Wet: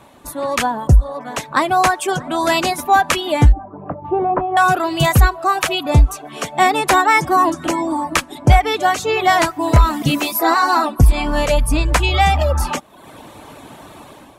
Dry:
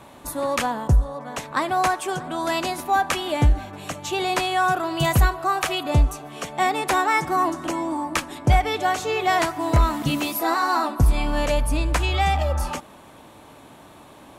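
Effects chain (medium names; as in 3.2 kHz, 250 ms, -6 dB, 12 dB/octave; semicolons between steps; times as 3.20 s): 3.52–4.57 s: low-pass 1.1 kHz 24 dB/octave; reverb removal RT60 0.66 s; level rider gain up to 10 dB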